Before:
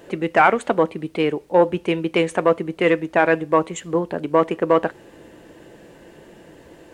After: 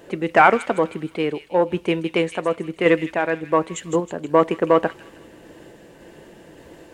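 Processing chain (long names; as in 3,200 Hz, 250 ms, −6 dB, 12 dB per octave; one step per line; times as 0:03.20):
sample-and-hold tremolo
on a send: delay with a high-pass on its return 159 ms, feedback 44%, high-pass 3,000 Hz, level −7 dB
on the sum: level +1.5 dB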